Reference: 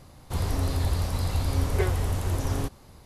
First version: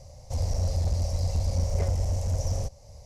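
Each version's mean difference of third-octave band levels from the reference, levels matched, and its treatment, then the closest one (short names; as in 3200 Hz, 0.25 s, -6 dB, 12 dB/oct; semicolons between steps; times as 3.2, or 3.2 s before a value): 7.0 dB: EQ curve 100 Hz 0 dB, 340 Hz -22 dB, 560 Hz +4 dB, 1400 Hz -23 dB, 2100 Hz -11 dB, 3600 Hz -15 dB, 5700 Hz +5 dB, 11000 Hz -14 dB; in parallel at -1 dB: compressor 4:1, threshold -41 dBFS, peak gain reduction 17 dB; on the sum: one-sided clip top -23 dBFS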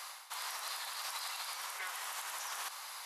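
18.0 dB: reverse; compressor 6:1, threshold -38 dBFS, peak gain reduction 17 dB; reverse; HPF 1000 Hz 24 dB/oct; limiter -44 dBFS, peak gain reduction 6 dB; gain +14 dB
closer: first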